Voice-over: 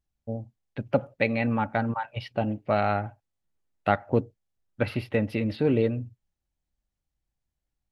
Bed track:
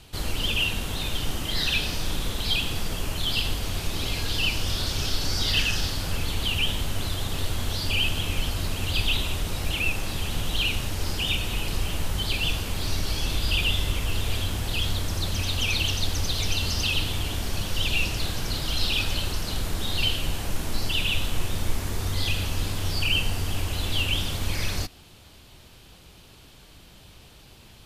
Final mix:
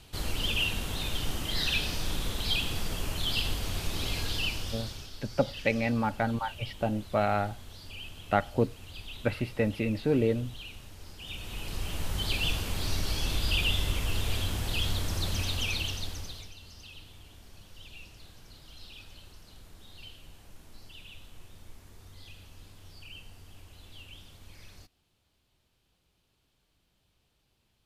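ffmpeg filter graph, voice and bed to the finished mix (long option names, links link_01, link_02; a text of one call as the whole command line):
ffmpeg -i stem1.wav -i stem2.wav -filter_complex "[0:a]adelay=4450,volume=-2.5dB[link_01];[1:a]volume=11.5dB,afade=type=out:start_time=4.2:duration=0.89:silence=0.177828,afade=type=in:start_time=11.18:duration=1.13:silence=0.16788,afade=type=out:start_time=15.35:duration=1.17:silence=0.1[link_02];[link_01][link_02]amix=inputs=2:normalize=0" out.wav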